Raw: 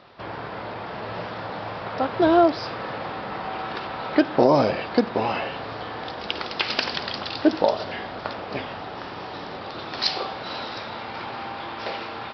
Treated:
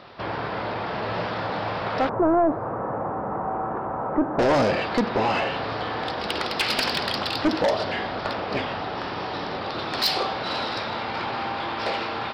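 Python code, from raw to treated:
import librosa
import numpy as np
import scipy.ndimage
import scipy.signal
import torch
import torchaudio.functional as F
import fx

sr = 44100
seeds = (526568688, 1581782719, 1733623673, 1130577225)

y = 10.0 ** (-21.0 / 20.0) * np.tanh(x / 10.0 ** (-21.0 / 20.0))
y = fx.lowpass(y, sr, hz=1200.0, slope=24, at=(2.09, 4.39))
y = y * 10.0 ** (5.0 / 20.0)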